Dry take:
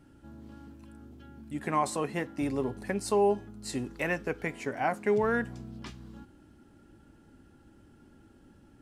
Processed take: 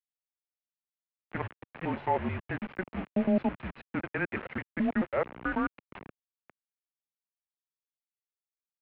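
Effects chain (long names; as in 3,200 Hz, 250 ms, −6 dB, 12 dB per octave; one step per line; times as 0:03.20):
slices reordered back to front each 109 ms, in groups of 4
bit reduction 6 bits
single-sideband voice off tune −190 Hz 320–2,800 Hz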